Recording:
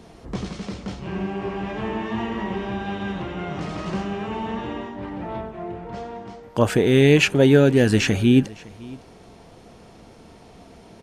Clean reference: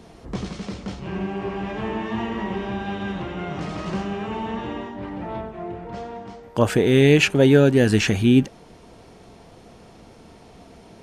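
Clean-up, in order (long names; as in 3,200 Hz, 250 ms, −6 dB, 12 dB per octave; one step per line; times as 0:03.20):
echo removal 559 ms −22 dB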